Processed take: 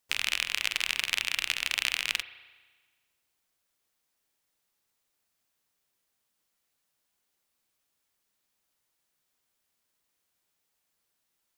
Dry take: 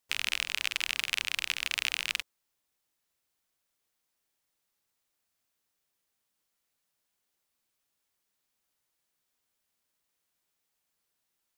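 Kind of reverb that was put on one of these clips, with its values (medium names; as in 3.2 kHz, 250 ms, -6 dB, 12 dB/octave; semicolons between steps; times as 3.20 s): spring tank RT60 1.4 s, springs 34 ms, chirp 35 ms, DRR 13 dB; trim +2 dB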